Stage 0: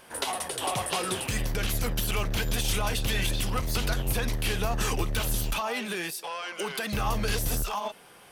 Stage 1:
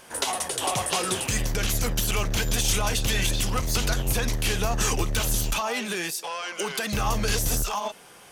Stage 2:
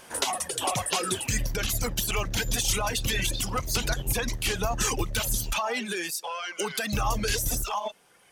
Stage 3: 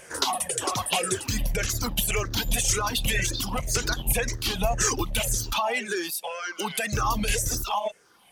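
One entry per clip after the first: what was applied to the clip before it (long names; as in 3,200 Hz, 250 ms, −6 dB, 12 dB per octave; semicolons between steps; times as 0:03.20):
parametric band 6,600 Hz +7.5 dB 0.63 octaves; level +2.5 dB
reverb reduction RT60 1.9 s
rippled gain that drifts along the octave scale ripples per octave 0.51, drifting −1.9 Hz, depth 11 dB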